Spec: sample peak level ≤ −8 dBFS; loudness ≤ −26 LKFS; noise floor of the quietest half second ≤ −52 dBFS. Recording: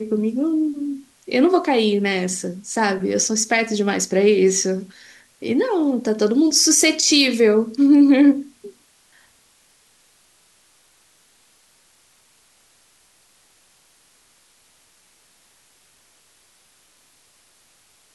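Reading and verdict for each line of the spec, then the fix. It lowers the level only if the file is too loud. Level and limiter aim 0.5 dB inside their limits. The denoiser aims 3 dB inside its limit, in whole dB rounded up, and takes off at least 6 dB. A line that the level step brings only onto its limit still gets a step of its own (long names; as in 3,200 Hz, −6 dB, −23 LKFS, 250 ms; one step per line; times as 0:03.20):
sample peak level −5.5 dBFS: out of spec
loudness −17.5 LKFS: out of spec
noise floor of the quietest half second −57 dBFS: in spec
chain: level −9 dB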